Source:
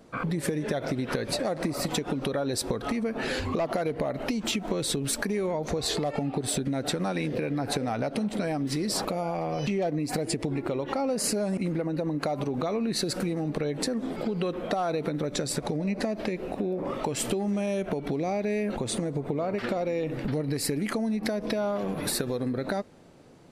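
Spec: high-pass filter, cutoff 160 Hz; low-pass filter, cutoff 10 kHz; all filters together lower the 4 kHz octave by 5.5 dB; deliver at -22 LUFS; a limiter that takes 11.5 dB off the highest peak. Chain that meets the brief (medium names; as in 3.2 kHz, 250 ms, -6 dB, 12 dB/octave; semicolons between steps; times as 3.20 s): high-pass 160 Hz; low-pass 10 kHz; peaking EQ 4 kHz -6.5 dB; trim +11.5 dB; peak limiter -13 dBFS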